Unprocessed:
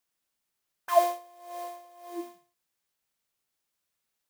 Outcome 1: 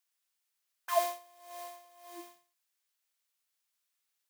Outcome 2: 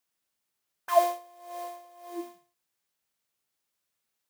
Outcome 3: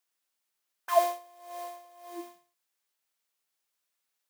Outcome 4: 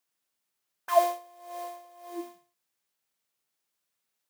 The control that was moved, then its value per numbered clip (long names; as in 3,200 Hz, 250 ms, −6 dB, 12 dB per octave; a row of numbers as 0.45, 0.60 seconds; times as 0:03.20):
high-pass filter, corner frequency: 1,500, 46, 490, 130 Hertz